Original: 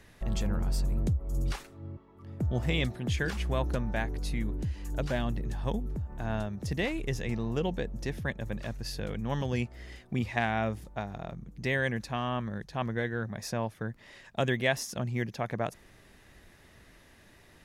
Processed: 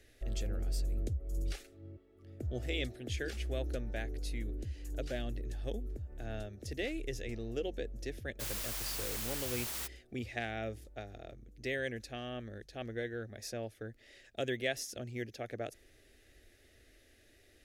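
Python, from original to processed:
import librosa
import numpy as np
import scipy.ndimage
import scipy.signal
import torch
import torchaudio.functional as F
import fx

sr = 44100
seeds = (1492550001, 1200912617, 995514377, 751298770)

y = fx.fixed_phaser(x, sr, hz=410.0, stages=4)
y = fx.quant_dither(y, sr, seeds[0], bits=6, dither='triangular', at=(8.39, 9.86), fade=0.02)
y = y * librosa.db_to_amplitude(-4.0)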